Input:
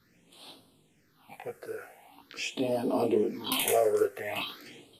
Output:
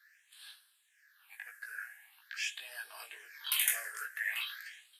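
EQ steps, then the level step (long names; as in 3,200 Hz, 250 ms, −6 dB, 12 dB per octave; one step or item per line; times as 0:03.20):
four-pole ladder high-pass 1,600 Hz, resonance 85%
high-shelf EQ 6,200 Hz +10.5 dB
+5.5 dB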